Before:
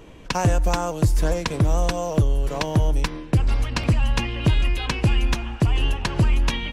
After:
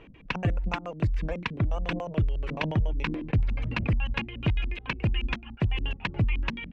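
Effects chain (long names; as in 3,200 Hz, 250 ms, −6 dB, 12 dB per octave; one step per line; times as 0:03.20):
reverb reduction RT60 0.68 s
auto-filter low-pass square 7 Hz 210–2,500 Hz
0:01.87–0:03.99: level that may fall only so fast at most 45 dB per second
level −7 dB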